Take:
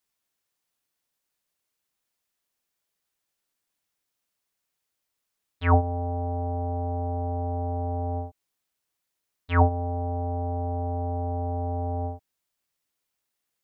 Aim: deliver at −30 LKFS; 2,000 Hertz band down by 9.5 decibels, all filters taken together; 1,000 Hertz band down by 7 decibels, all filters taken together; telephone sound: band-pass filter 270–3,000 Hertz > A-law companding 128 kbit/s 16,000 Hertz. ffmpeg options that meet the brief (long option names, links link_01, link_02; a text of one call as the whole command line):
ffmpeg -i in.wav -af "highpass=270,lowpass=3000,equalizer=frequency=1000:width_type=o:gain=-8.5,equalizer=frequency=2000:width_type=o:gain=-8.5,volume=6dB" -ar 16000 -c:a pcm_alaw out.wav